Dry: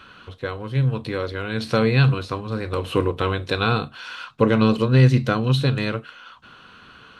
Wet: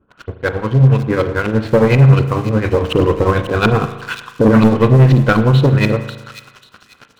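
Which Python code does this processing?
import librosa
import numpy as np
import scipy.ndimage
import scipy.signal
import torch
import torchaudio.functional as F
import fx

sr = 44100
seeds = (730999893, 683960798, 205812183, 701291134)

y = fx.tremolo_shape(x, sr, shape='triangle', hz=11.0, depth_pct=80)
y = fx.filter_lfo_lowpass(y, sr, shape='saw_up', hz=4.1, low_hz=330.0, high_hz=3300.0, q=1.2)
y = fx.leveller(y, sr, passes=3)
y = fx.echo_wet_highpass(y, sr, ms=541, feedback_pct=31, hz=4800.0, wet_db=-4.0)
y = fx.rev_spring(y, sr, rt60_s=1.1, pass_ms=(37,), chirp_ms=30, drr_db=9.5)
y = y * librosa.db_to_amplitude(3.0)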